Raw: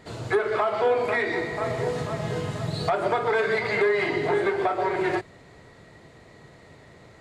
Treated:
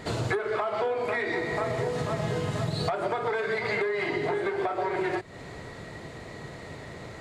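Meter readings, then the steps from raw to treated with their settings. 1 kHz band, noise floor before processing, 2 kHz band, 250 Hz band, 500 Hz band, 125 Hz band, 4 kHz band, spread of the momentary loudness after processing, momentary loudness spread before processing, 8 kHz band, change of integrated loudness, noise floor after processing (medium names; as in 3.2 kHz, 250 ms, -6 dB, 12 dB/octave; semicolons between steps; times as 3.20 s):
-4.0 dB, -51 dBFS, -3.5 dB, -2.0 dB, -4.0 dB, 0.0 dB, -1.5 dB, 14 LU, 7 LU, no reading, -3.5 dB, -43 dBFS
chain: compression 10:1, threshold -34 dBFS, peak gain reduction 16 dB; trim +8.5 dB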